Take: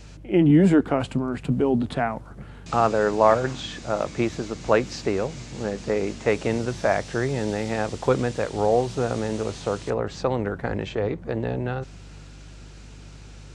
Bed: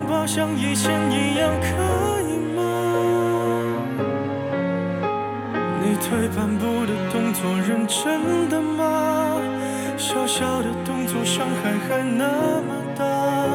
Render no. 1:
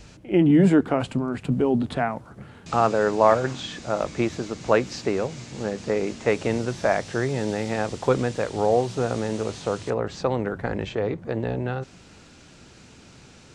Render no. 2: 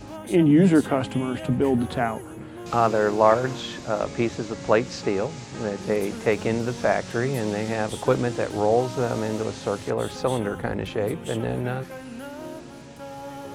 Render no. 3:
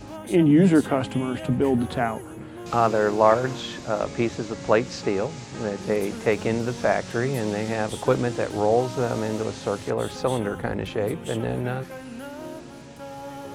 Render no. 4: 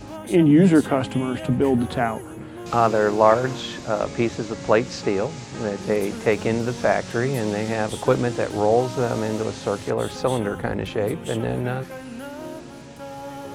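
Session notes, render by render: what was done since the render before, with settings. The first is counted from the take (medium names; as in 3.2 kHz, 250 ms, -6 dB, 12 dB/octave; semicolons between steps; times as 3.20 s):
de-hum 50 Hz, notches 3
add bed -16.5 dB
no audible change
trim +2 dB; peak limiter -3 dBFS, peak gain reduction 1 dB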